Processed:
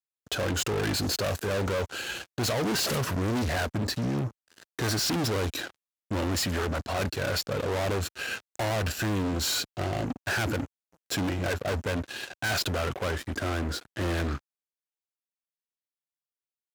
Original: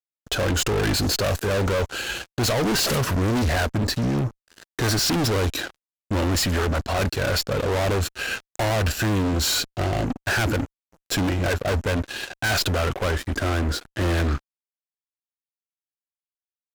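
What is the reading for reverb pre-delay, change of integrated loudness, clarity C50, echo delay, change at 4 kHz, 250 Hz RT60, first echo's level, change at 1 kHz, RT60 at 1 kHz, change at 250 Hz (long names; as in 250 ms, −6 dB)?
no reverb audible, −6.0 dB, no reverb audible, no echo audible, −5.5 dB, no reverb audible, no echo audible, −5.5 dB, no reverb audible, −5.5 dB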